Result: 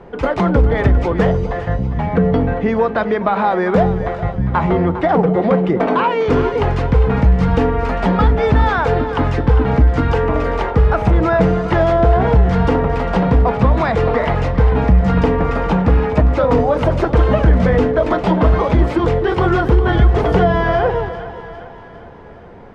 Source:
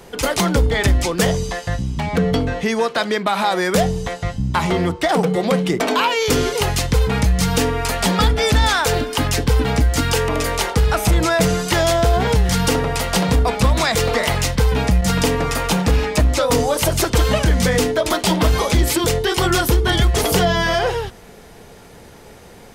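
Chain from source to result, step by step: low-pass 1.4 kHz 12 dB/octave; two-band feedback delay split 680 Hz, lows 254 ms, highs 403 ms, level -12 dB; trim +3.5 dB

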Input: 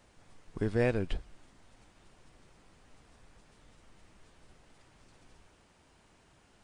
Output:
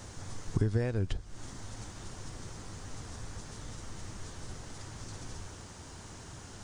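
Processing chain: compression 20:1, threshold -43 dBFS, peak gain reduction 21 dB; fifteen-band graphic EQ 100 Hz +9 dB, 630 Hz -3 dB, 2.5 kHz -6 dB, 6.3 kHz +8 dB; trim +15 dB

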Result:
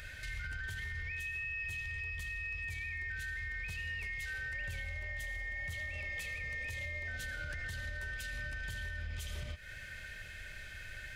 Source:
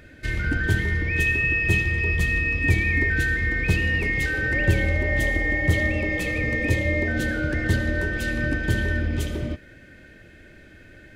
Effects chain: amplifier tone stack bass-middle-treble 10-0-10; compression 6:1, threshold -44 dBFS, peak gain reduction 19.5 dB; peak limiter -41 dBFS, peak gain reduction 8 dB; trim +8.5 dB

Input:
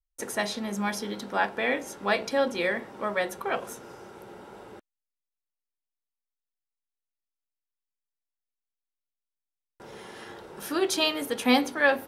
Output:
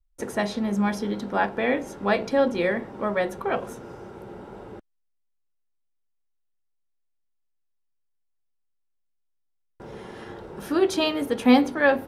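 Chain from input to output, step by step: tilt EQ -2.5 dB/octave; trim +2 dB

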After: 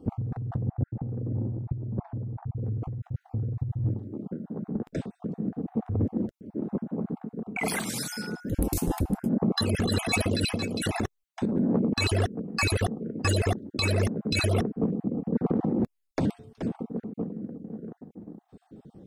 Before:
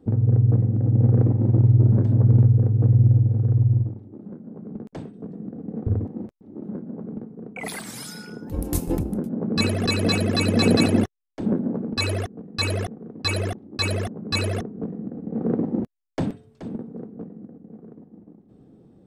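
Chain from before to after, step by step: random holes in the spectrogram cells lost 25%; 0.58–2.64 s: low-pass 1.1 kHz 12 dB/octave; compressor with a negative ratio -26 dBFS, ratio -1; saturation -13.5 dBFS, distortion -24 dB

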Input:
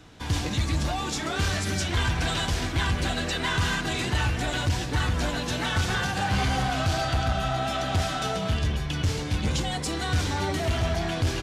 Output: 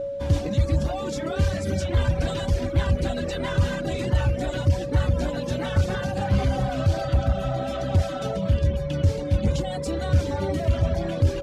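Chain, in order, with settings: whistle 560 Hz -27 dBFS; tilt shelf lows +6.5 dB, about 630 Hz; reverb removal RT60 0.83 s

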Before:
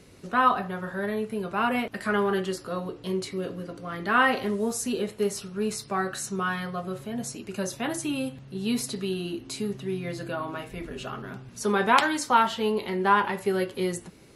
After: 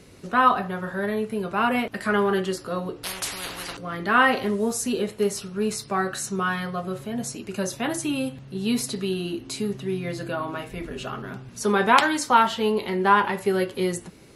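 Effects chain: 3.03–3.77 s: spectrum-flattening compressor 10:1; trim +3 dB

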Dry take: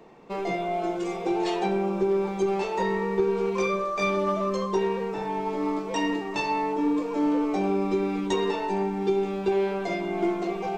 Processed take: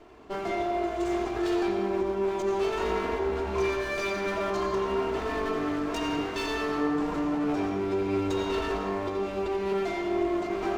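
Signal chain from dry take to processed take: comb filter that takes the minimum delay 2.9 ms; peak limiter -24 dBFS, peak gain reduction 9.5 dB; on a send: reverberation RT60 1.4 s, pre-delay 76 ms, DRR 3 dB

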